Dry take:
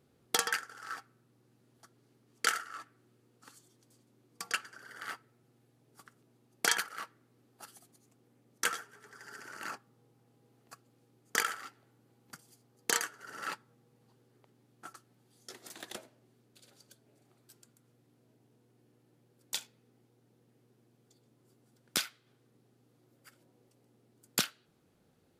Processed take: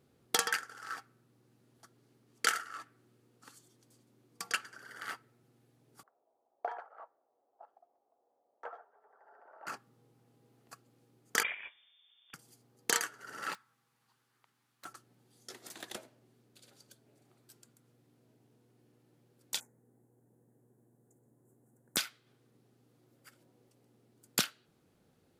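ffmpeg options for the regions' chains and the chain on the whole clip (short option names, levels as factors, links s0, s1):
-filter_complex "[0:a]asettb=1/sr,asplit=3[s0][s1][s2];[s0]atrim=end=6.034[s3];[s1]atrim=start=6.03:end=9.67,asetpts=PTS-STARTPTS,afade=t=in:d=0.004:c=qsin,afade=t=out:st=3.636:d=0.004:c=qsin,asuperpass=centerf=710:order=4:qfactor=1.6,equalizer=f=700:w=5:g=6.5[s4];[s2]atrim=start=9.666[s5];[s3][s4]acrossfade=d=0.004:c1=hsin:c2=qsin[s6];[s6][s5]acrossfade=d=0.004:c1=qsin:c2=hsin,asettb=1/sr,asplit=3[s7][s8][s9];[s7]atrim=end=11.434[s10];[s8]atrim=start=11.43:end=12.34,asetpts=PTS-STARTPTS,afade=t=in:d=0.004:c=qsin,afade=t=out:st=0.906:d=0.004:c=qsin,aeval=exprs='0.0668*(abs(mod(val(0)/0.0668+3,4)-2)-1)':c=same,lowpass=f=3100:t=q:w=0.5098,lowpass=f=3100:t=q:w=0.6013,lowpass=f=3100:t=q:w=0.9,lowpass=f=3100:t=q:w=2.563,afreqshift=-3700[s11];[s9]atrim=start=12.336[s12];[s10][s11]acrossfade=d=0.004:c1=hsin:c2=qsin[s13];[s13][s12]acrossfade=d=0.004:c1=qsin:c2=hsin,asettb=1/sr,asplit=3[s14][s15][s16];[s14]atrim=end=13.544[s17];[s15]atrim=start=13.54:end=14.85,asetpts=PTS-STARTPTS,afade=t=in:d=0.004:c=qsin,afade=t=out:st=1.306:d=0.004:c=qsin,lowshelf=f=760:t=q:w=1.5:g=-13.5,aeval=exprs='(mod(158*val(0)+1,2)-1)/158':c=same[s18];[s16]atrim=start=14.846[s19];[s17][s18]acrossfade=d=0.004:c1=hsin:c2=qsin[s20];[s20][s19]acrossfade=d=0.004:c1=qsin:c2=hsin,asettb=1/sr,asplit=3[s21][s22][s23];[s21]atrim=end=19.604[s24];[s22]atrim=start=19.6:end=21.97,asetpts=PTS-STARTPTS,afade=t=in:d=0.004:c=qsin,afade=t=out:st=2.366:d=0.004:c=qsin,asuperstop=centerf=3600:order=8:qfactor=0.66,equalizer=f=1300:w=3:g=-9.5[s25];[s23]atrim=start=21.966[s26];[s24][s25]acrossfade=d=0.004:c1=hsin:c2=qsin[s27];[s27][s26]acrossfade=d=0.004:c1=qsin:c2=hsin"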